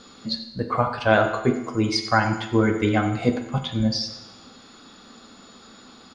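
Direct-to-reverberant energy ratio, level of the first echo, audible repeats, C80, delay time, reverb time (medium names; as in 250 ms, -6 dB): 6.0 dB, -15.5 dB, 1, 10.0 dB, 93 ms, 1.0 s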